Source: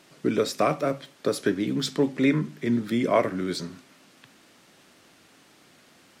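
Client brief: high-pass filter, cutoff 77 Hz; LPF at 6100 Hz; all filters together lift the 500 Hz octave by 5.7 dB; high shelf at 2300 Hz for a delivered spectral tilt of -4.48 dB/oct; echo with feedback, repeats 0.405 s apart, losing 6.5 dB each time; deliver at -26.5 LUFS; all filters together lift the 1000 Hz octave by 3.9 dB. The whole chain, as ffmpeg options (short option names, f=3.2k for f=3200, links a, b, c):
-af "highpass=77,lowpass=6.1k,equalizer=f=500:t=o:g=6.5,equalizer=f=1k:t=o:g=4,highshelf=f=2.3k:g=-6.5,aecho=1:1:405|810|1215|1620|2025|2430:0.473|0.222|0.105|0.0491|0.0231|0.0109,volume=-4.5dB"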